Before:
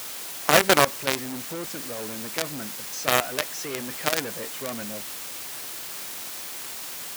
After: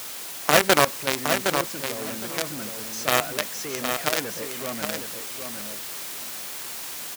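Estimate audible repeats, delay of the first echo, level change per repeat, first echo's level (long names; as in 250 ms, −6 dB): 2, 764 ms, −15.0 dB, −6.0 dB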